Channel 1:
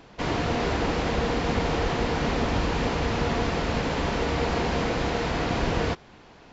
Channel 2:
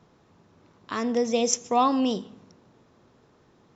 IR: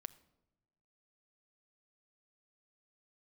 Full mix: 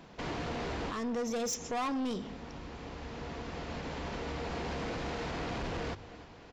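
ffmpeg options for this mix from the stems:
-filter_complex "[0:a]volume=0.562,asplit=2[s0][s1];[s1]volume=0.0794[s2];[1:a]volume=1.06,asplit=2[s3][s4];[s4]apad=whole_len=287735[s5];[s0][s5]sidechaincompress=threshold=0.00501:ratio=3:attack=16:release=1490[s6];[s2]aecho=0:1:307|614|921|1228|1535|1842|2149|2456|2763:1|0.57|0.325|0.185|0.106|0.0602|0.0343|0.0195|0.0111[s7];[s6][s3][s7]amix=inputs=3:normalize=0,bandreject=f=50:t=h:w=6,bandreject=f=100:t=h:w=6,asoftclip=type=tanh:threshold=0.0531,alimiter=level_in=2.11:limit=0.0631:level=0:latency=1:release=92,volume=0.473"

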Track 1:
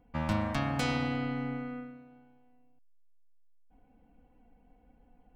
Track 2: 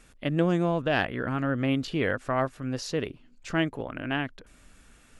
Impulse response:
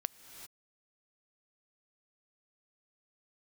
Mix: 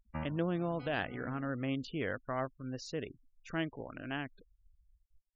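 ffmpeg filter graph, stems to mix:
-filter_complex "[0:a]alimiter=limit=0.0841:level=0:latency=1:release=404,volume=0.596,afade=t=out:st=1.33:d=0.56:silence=0.334965[s0];[1:a]volume=0.335,asplit=2[s1][s2];[s2]apad=whole_len=235990[s3];[s0][s3]sidechaincompress=threshold=0.00398:ratio=5:attack=16:release=277[s4];[s4][s1]amix=inputs=2:normalize=0,afftfilt=real='re*gte(hypot(re,im),0.00398)':imag='im*gte(hypot(re,im),0.00398)':win_size=1024:overlap=0.75"

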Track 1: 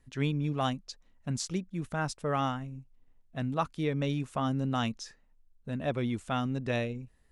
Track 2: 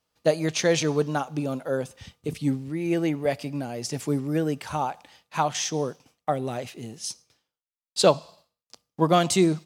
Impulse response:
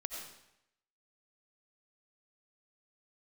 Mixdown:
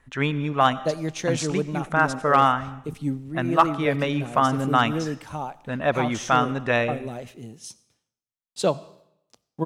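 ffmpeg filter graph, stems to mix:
-filter_complex "[0:a]equalizer=f=1300:w=0.49:g=13,volume=1.12,asplit=2[s0][s1];[s1]volume=0.282[s2];[1:a]lowshelf=f=470:g=5.5,adelay=600,volume=0.447,asplit=2[s3][s4];[s4]volume=0.126[s5];[2:a]atrim=start_sample=2205[s6];[s2][s5]amix=inputs=2:normalize=0[s7];[s7][s6]afir=irnorm=-1:irlink=0[s8];[s0][s3][s8]amix=inputs=3:normalize=0,equalizer=f=4700:t=o:w=0.31:g=-5.5,volume=2.24,asoftclip=hard,volume=0.447"

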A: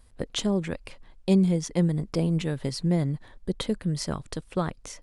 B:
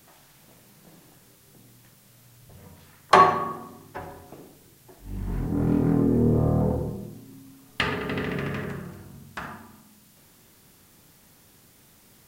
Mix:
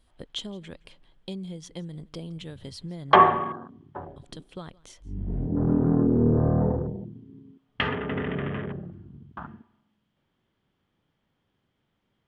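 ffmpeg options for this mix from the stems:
-filter_complex "[0:a]equalizer=f=4000:w=5.6:g=6,acompressor=threshold=0.0562:ratio=3,volume=0.335,asplit=3[s0][s1][s2];[s0]atrim=end=3.37,asetpts=PTS-STARTPTS,afade=t=out:st=3.366:d=0.004:c=hsin[s3];[s1]atrim=start=3.37:end=4.16,asetpts=PTS-STARTPTS,volume=0[s4];[s2]atrim=start=4.16,asetpts=PTS-STARTPTS,afade=t=in:d=0.004:c=hsin[s5];[s3][s4][s5]concat=n=3:v=0:a=1,asplit=2[s6][s7];[s7]volume=0.0668[s8];[1:a]afwtdn=0.02,lowpass=2200,volume=1[s9];[s8]aecho=0:1:167:1[s10];[s6][s9][s10]amix=inputs=3:normalize=0,equalizer=f=3200:t=o:w=0.22:g=12"

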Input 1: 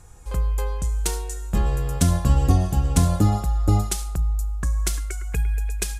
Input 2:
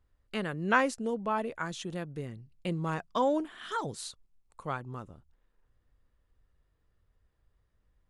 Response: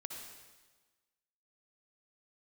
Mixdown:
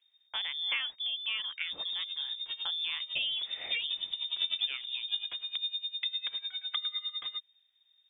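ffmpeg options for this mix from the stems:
-filter_complex "[0:a]aeval=exprs='val(0)*pow(10,-20*(0.5-0.5*cos(2*PI*9.9*n/s))/20)':c=same,adelay=1400,volume=0.944,asplit=2[s0][s1];[s1]volume=0.119[s2];[1:a]volume=1.06,asplit=2[s3][s4];[s4]apad=whole_len=326054[s5];[s0][s5]sidechaincompress=threshold=0.00562:ratio=8:attack=11:release=622[s6];[2:a]atrim=start_sample=2205[s7];[s2][s7]afir=irnorm=-1:irlink=0[s8];[s6][s3][s8]amix=inputs=3:normalize=0,acrossover=split=99|1900[s9][s10][s11];[s9]acompressor=threshold=0.0141:ratio=4[s12];[s10]acompressor=threshold=0.0251:ratio=4[s13];[s11]acompressor=threshold=0.00794:ratio=4[s14];[s12][s13][s14]amix=inputs=3:normalize=0,lowpass=f=3100:t=q:w=0.5098,lowpass=f=3100:t=q:w=0.6013,lowpass=f=3100:t=q:w=0.9,lowpass=f=3100:t=q:w=2.563,afreqshift=-3700"

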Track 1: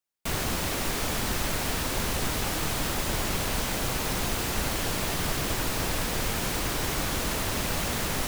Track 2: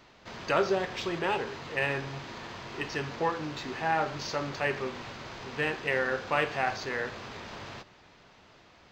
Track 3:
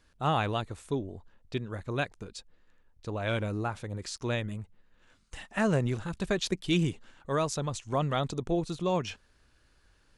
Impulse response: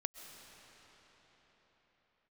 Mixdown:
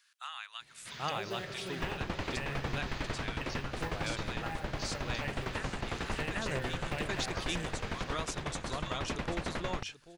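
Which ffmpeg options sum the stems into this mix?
-filter_complex "[0:a]lowpass=2600,aeval=exprs='val(0)*pow(10,-20*if(lt(mod(11*n/s,1),2*abs(11)/1000),1-mod(11*n/s,1)/(2*abs(11)/1000),(mod(11*n/s,1)-2*abs(11)/1000)/(1-2*abs(11)/1000))/20)':c=same,adelay=1550,volume=1.06[s0];[1:a]acrusher=bits=8:mode=log:mix=0:aa=0.000001,equalizer=f=140:t=o:w=0.88:g=12,adelay=600,volume=1,asplit=2[s1][s2];[s2]volume=0.266[s3];[2:a]tiltshelf=f=970:g=-6.5,volume=0.75,asplit=2[s4][s5];[s5]volume=0.596[s6];[s1][s4]amix=inputs=2:normalize=0,highpass=f=1200:w=0.5412,highpass=f=1200:w=1.3066,acompressor=threshold=0.00891:ratio=4,volume=1[s7];[3:a]atrim=start_sample=2205[s8];[s3][s8]afir=irnorm=-1:irlink=0[s9];[s6]aecho=0:1:783|1566|2349:1|0.18|0.0324[s10];[s0][s7][s9][s10]amix=inputs=4:normalize=0,alimiter=limit=0.0708:level=0:latency=1:release=227"

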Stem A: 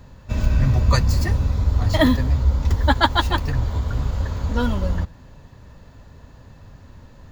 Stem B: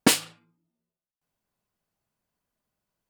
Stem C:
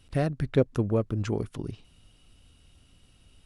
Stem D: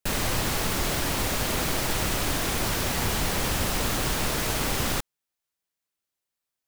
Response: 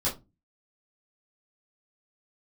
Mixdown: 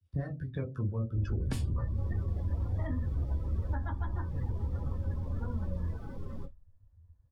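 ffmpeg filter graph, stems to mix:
-filter_complex "[0:a]lowpass=1800,adelay=850,volume=0.133,asplit=2[s0][s1];[s1]volume=0.335[s2];[1:a]alimiter=limit=0.211:level=0:latency=1:release=324,adelay=1450,volume=1,asplit=2[s3][s4];[s4]volume=0.178[s5];[2:a]highpass=52,acrossover=split=450[s6][s7];[s6]aeval=exprs='val(0)*(1-0.7/2+0.7/2*cos(2*PI*5.9*n/s))':c=same[s8];[s7]aeval=exprs='val(0)*(1-0.7/2-0.7/2*cos(2*PI*5.9*n/s))':c=same[s9];[s8][s9]amix=inputs=2:normalize=0,volume=0.473,asplit=3[s10][s11][s12];[s11]volume=0.708[s13];[3:a]alimiter=limit=0.126:level=0:latency=1:release=67,asoftclip=type=tanh:threshold=0.0596,highshelf=f=5500:g=-10.5,adelay=1450,volume=0.211,asplit=2[s14][s15];[s15]volume=0.422[s16];[s12]apad=whole_len=358204[s17];[s14][s17]sidechaincompress=threshold=0.00708:ratio=8:attack=16:release=997[s18];[4:a]atrim=start_sample=2205[s19];[s2][s5][s13][s16]amix=inputs=4:normalize=0[s20];[s20][s19]afir=irnorm=-1:irlink=0[s21];[s0][s3][s10][s18][s21]amix=inputs=5:normalize=0,afftdn=nr=23:nf=-37,acrossover=split=83|220|1300[s22][s23][s24][s25];[s22]acompressor=threshold=0.0224:ratio=4[s26];[s23]acompressor=threshold=0.0178:ratio=4[s27];[s24]acompressor=threshold=0.00501:ratio=4[s28];[s25]acompressor=threshold=0.00316:ratio=4[s29];[s26][s27][s28][s29]amix=inputs=4:normalize=0"

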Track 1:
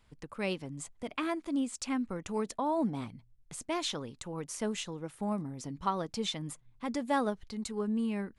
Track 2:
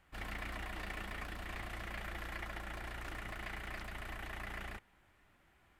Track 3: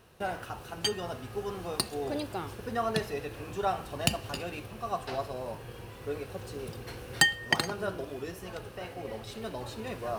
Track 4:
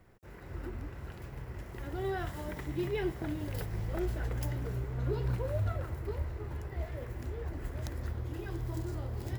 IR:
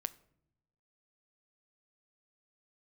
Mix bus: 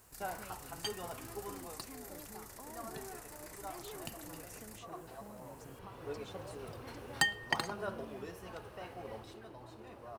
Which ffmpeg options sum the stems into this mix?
-filter_complex "[0:a]acompressor=threshold=0.0178:ratio=6,volume=0.178[s0];[1:a]acompressor=threshold=0.00141:ratio=2.5,aexciter=amount=15.9:drive=4.6:freq=4700,volume=0.596[s1];[2:a]equalizer=f=980:w=1.4:g=6.5,volume=1.26,afade=t=out:st=1.37:d=0.53:silence=0.298538,afade=t=in:st=5.36:d=0.71:silence=0.251189,afade=t=out:st=9.16:d=0.25:silence=0.334965[s2];[3:a]asoftclip=type=hard:threshold=0.015,bandpass=f=740:t=q:w=0.66:csg=0,adelay=950,volume=0.422[s3];[s0][s1][s2][s3]amix=inputs=4:normalize=0"

